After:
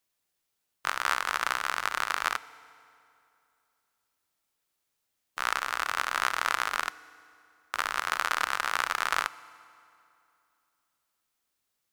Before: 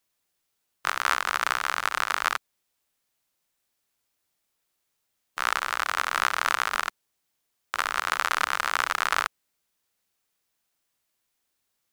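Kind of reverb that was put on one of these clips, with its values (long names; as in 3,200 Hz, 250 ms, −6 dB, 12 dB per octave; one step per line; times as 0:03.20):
feedback delay network reverb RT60 2.7 s, high-frequency decay 0.75×, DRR 17 dB
level −3 dB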